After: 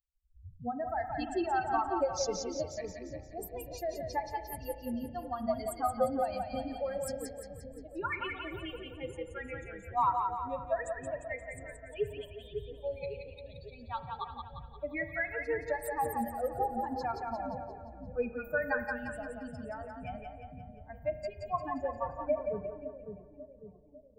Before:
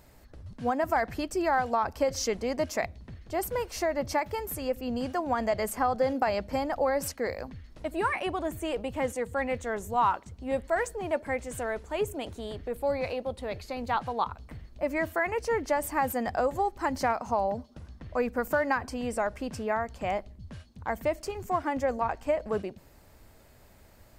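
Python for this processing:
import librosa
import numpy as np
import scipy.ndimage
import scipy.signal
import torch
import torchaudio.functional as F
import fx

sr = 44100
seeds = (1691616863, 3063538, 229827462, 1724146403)

y = fx.bin_expand(x, sr, power=3.0)
y = fx.high_shelf(y, sr, hz=12000.0, db=-7.5)
y = fx.echo_split(y, sr, split_hz=470.0, low_ms=551, high_ms=175, feedback_pct=52, wet_db=-4.5)
y = fx.rev_spring(y, sr, rt60_s=1.8, pass_ms=(34,), chirp_ms=75, drr_db=10.5)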